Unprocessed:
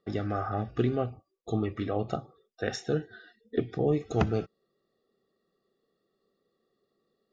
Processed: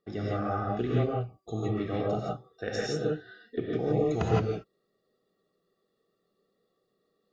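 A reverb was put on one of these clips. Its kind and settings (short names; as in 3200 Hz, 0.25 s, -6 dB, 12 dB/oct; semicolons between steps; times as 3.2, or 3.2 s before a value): non-linear reverb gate 0.19 s rising, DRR -5 dB; gain -5 dB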